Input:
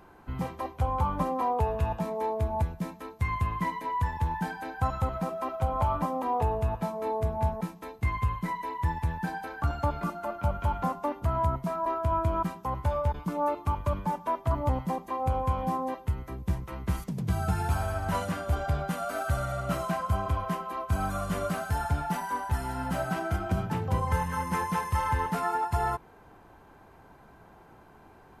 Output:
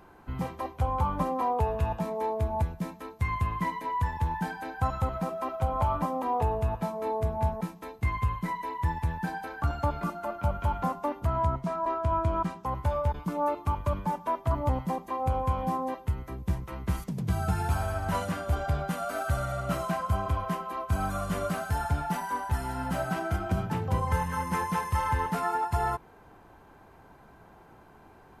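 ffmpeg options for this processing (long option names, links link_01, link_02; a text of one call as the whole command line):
ffmpeg -i in.wav -filter_complex "[0:a]asettb=1/sr,asplit=3[link_01][link_02][link_03];[link_01]atrim=end=11.274[link_04];[link_02]atrim=start=11.27:end=12.66,asetpts=PTS-STARTPTS,afade=type=in:duration=0.004:curve=qsin,afade=type=out:start_time=1.386:duration=0.004:curve=qsin,lowpass=8400[link_05];[link_03]atrim=start=12.656[link_06];[link_04][link_05]acrossfade=duration=0.004:curve1=hsin:curve2=qsin[link_07];[link_07][link_06]acrossfade=duration=0.004:curve1=qsin:curve2=hsin" out.wav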